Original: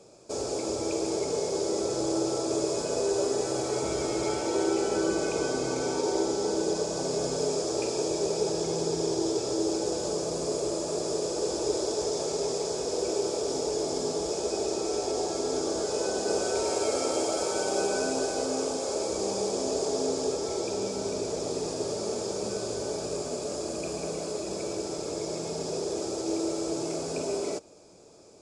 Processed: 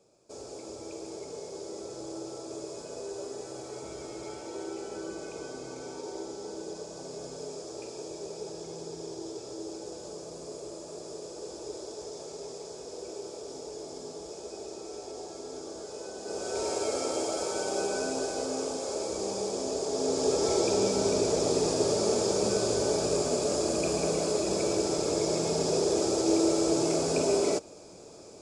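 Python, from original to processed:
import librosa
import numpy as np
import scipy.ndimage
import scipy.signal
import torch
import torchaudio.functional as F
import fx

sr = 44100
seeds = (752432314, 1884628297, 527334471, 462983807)

y = fx.gain(x, sr, db=fx.line((16.18, -11.5), (16.63, -3.0), (19.87, -3.0), (20.46, 5.0)))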